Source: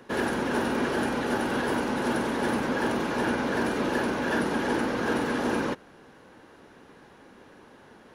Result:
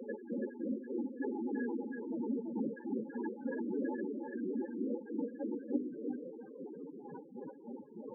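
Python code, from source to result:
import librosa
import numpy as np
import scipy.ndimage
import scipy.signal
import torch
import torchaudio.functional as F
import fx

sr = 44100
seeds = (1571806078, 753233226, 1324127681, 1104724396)

y = fx.hum_notches(x, sr, base_hz=50, count=8)
y = fx.over_compress(y, sr, threshold_db=-36.0, ratio=-1.0)
y = fx.step_gate(y, sr, bpm=100, pattern='x.x.x.x.xxxx..x', floor_db=-12.0, edge_ms=4.5)
y = fx.spec_topn(y, sr, count=4)
y = y + 10.0 ** (-4.0 / 20.0) * np.pad(y, (int(331 * sr / 1000.0), 0))[:len(y)]
y = y * 10.0 ** (5.0 / 20.0)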